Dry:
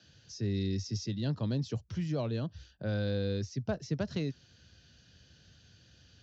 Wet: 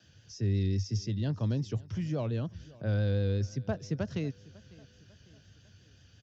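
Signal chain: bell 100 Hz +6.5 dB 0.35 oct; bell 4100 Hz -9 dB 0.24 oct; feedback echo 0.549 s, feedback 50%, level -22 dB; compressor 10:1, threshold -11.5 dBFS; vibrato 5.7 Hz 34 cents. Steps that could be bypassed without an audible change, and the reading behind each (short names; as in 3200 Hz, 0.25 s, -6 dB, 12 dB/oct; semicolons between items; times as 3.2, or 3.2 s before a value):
compressor, threshold -11.5 dBFS: input peak -18.0 dBFS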